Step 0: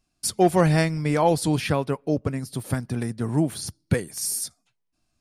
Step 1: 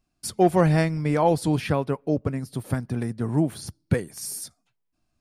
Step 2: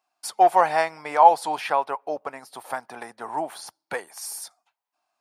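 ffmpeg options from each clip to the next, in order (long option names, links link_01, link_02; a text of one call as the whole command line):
ffmpeg -i in.wav -af "equalizer=frequency=7700:width_type=o:width=2.9:gain=-6.5" out.wav
ffmpeg -i in.wav -af "highpass=frequency=830:width_type=q:width=3.4,equalizer=frequency=9900:width=0.46:gain=-3,volume=1.5dB" out.wav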